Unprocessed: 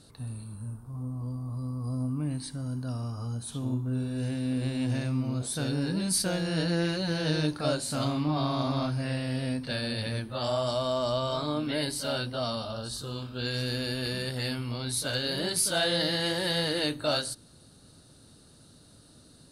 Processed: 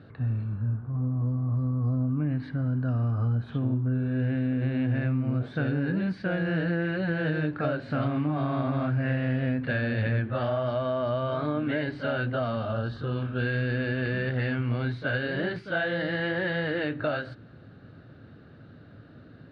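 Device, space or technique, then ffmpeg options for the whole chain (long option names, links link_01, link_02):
bass amplifier: -af "acompressor=threshold=-31dB:ratio=6,highpass=74,equalizer=frequency=110:width_type=q:width=4:gain=5,equalizer=frequency=950:width_type=q:width=4:gain=-7,equalizer=frequency=1600:width_type=q:width=4:gain=6,lowpass=frequency=2400:width=0.5412,lowpass=frequency=2400:width=1.3066,volume=7dB"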